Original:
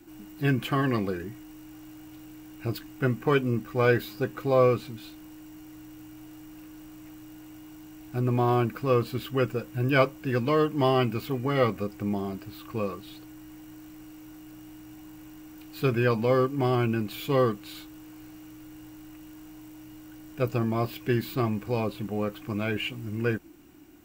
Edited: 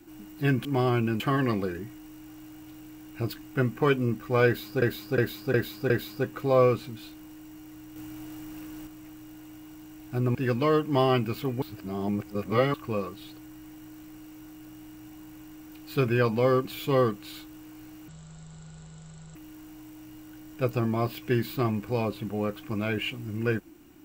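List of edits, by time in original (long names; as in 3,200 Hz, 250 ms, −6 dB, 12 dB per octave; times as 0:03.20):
0:03.91–0:04.27: repeat, 5 plays
0:05.97–0:06.88: clip gain +5 dB
0:08.36–0:10.21: remove
0:11.48–0:12.60: reverse
0:16.51–0:17.06: move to 0:00.65
0:18.49–0:19.14: play speed 51%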